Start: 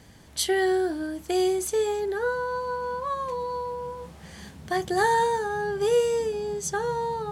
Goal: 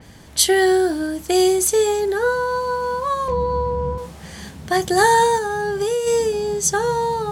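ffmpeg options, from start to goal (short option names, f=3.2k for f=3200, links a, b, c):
-filter_complex "[0:a]asettb=1/sr,asplit=3[a][b][c];[a]atrim=end=3.284[d];[b]atrim=start=3.28:end=3.98,asetpts=PTS-STARTPTS,afade=t=in:d=0.004:c=qsin,afade=t=out:st=0.696:d=0.004:c=qsin,aemphasis=mode=reproduction:type=riaa[e];[c]atrim=start=3.976[f];[d][e]acrossfade=d=0.004:c1=hsin:c2=qsin[g];[g][f]acrossfade=d=0.004:c1=qsin:c2=hsin,asplit=3[h][i][j];[h]afade=t=out:st=5.38:d=0.02[k];[i]acompressor=threshold=-26dB:ratio=12,afade=t=in:st=5.38:d=0.02,afade=t=out:st=6.06:d=0.02[l];[j]afade=t=in:st=6.06:d=0.02[m];[k][l][m]amix=inputs=3:normalize=0,adynamicequalizer=threshold=0.00501:dfrequency=4200:dqfactor=0.7:tfrequency=4200:tqfactor=0.7:attack=5:release=100:ratio=0.375:range=3:mode=boostabove:tftype=highshelf,volume=7.5dB"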